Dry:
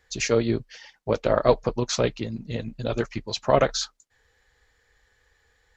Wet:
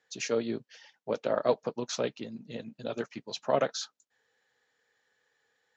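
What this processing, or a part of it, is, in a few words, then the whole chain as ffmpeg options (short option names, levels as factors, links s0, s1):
television speaker: -af "highpass=f=160:w=0.5412,highpass=f=160:w=1.3066,equalizer=f=180:t=q:w=4:g=-3,equalizer=f=350:t=q:w=4:g=-3,equalizer=f=1100:t=q:w=4:g=-3,equalizer=f=2100:t=q:w=4:g=-4,equalizer=f=4600:t=q:w=4:g=-3,lowpass=f=7200:w=0.5412,lowpass=f=7200:w=1.3066,volume=0.473"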